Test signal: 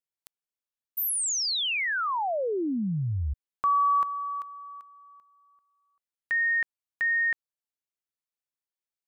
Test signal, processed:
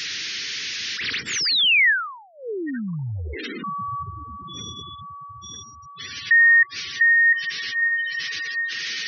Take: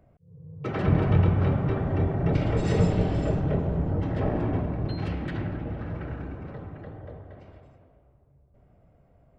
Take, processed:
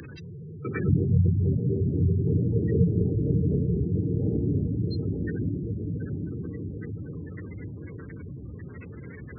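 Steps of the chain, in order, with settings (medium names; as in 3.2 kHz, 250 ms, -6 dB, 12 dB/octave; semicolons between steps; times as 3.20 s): one-bit delta coder 32 kbps, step -33 dBFS; high-pass 71 Hz 24 dB/octave; on a send: echo that smears into a reverb 878 ms, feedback 51%, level -6 dB; on the sum: spectral gate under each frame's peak -15 dB strong; FFT filter 460 Hz 0 dB, 670 Hz -28 dB, 1.8 kHz +12 dB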